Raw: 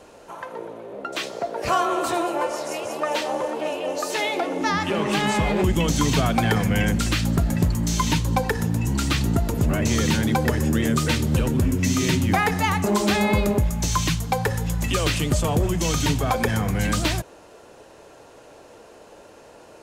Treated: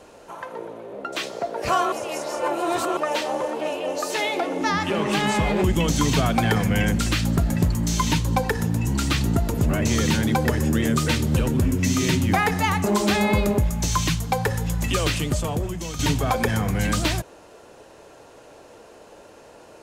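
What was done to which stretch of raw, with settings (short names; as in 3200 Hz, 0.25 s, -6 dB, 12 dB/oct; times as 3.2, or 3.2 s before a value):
1.92–2.97 reverse
14.99–15.99 fade out, to -11 dB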